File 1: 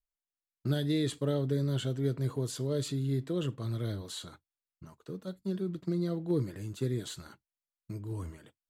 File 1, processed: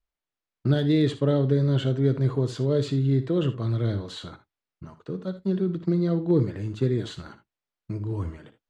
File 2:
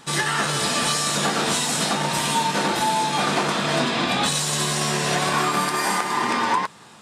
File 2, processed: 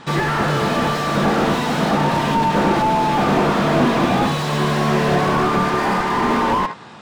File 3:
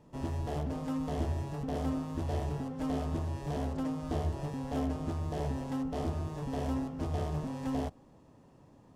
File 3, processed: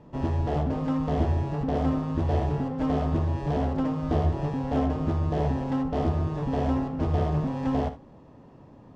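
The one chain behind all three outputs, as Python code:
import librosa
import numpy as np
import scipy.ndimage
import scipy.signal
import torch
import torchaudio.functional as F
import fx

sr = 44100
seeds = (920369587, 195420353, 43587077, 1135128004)

p1 = scipy.signal.sosfilt(scipy.signal.butter(2, 5000.0, 'lowpass', fs=sr, output='sos'), x)
p2 = fx.high_shelf(p1, sr, hz=2900.0, db=-6.5)
p3 = p2 + fx.room_early_taps(p2, sr, ms=(59, 77), db=(-14.5, -16.5), dry=0)
p4 = fx.slew_limit(p3, sr, full_power_hz=55.0)
y = F.gain(torch.from_numpy(p4), 8.5).numpy()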